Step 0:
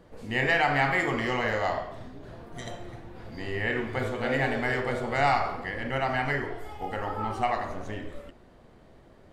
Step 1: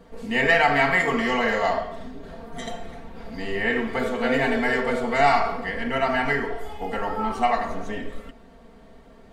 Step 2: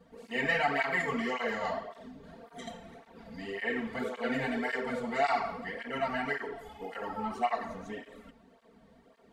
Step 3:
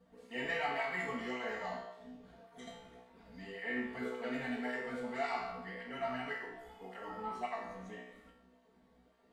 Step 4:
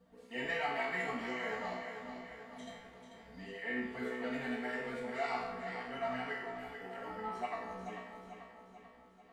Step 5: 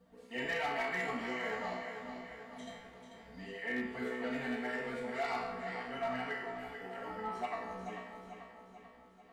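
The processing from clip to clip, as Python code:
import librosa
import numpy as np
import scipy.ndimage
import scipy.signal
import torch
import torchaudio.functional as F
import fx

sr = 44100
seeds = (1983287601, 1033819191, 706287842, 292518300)

y1 = x + 0.91 * np.pad(x, (int(4.4 * sr / 1000.0), 0))[:len(x)]
y1 = y1 * 10.0 ** (2.5 / 20.0)
y2 = fx.flanger_cancel(y1, sr, hz=1.8, depth_ms=3.2)
y2 = y2 * 10.0 ** (-7.0 / 20.0)
y3 = fx.comb_fb(y2, sr, f0_hz=62.0, decay_s=0.67, harmonics='all', damping=0.0, mix_pct=90)
y3 = y3 * 10.0 ** (3.0 / 20.0)
y4 = fx.echo_feedback(y3, sr, ms=440, feedback_pct=53, wet_db=-8.5)
y5 = np.clip(y4, -10.0 ** (-30.5 / 20.0), 10.0 ** (-30.5 / 20.0))
y5 = y5 * 10.0 ** (1.0 / 20.0)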